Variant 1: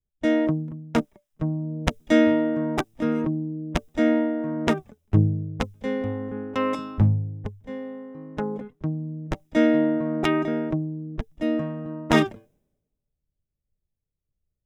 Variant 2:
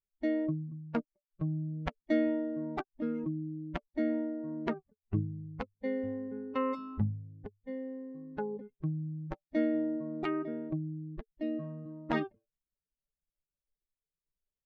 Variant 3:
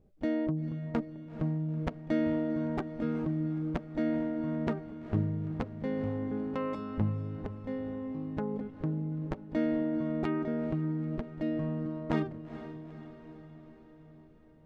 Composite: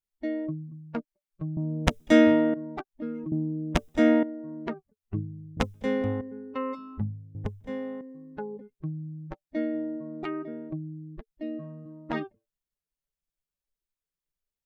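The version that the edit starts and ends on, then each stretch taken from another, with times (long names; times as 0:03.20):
2
0:01.57–0:02.54: punch in from 1
0:03.32–0:04.23: punch in from 1
0:05.57–0:06.21: punch in from 1
0:07.35–0:08.01: punch in from 1
not used: 3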